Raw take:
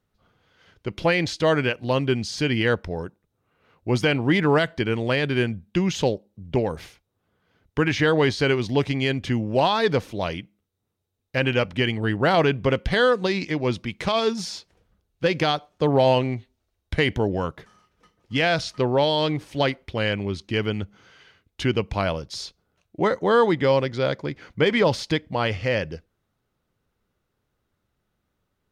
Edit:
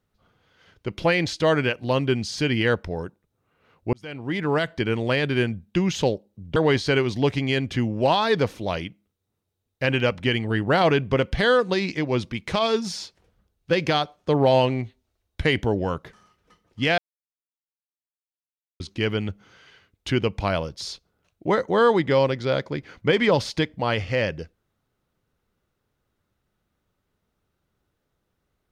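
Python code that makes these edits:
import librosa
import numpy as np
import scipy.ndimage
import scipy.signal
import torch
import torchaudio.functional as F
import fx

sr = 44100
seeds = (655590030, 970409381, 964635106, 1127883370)

y = fx.edit(x, sr, fx.fade_in_span(start_s=3.93, length_s=0.93),
    fx.cut(start_s=6.56, length_s=1.53),
    fx.silence(start_s=18.51, length_s=1.82), tone=tone)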